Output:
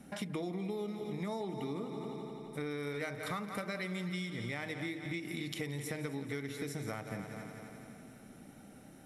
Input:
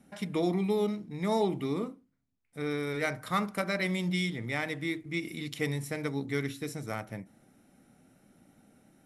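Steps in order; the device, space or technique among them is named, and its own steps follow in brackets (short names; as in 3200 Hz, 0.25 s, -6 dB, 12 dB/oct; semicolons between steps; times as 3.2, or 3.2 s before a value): multi-head echo 86 ms, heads second and third, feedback 57%, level -14 dB; serial compression, peaks first (compressor, threshold -37 dBFS, peak gain reduction 13 dB; compressor 1.5:1, threshold -51 dBFS, peak gain reduction 6 dB); gain +6.5 dB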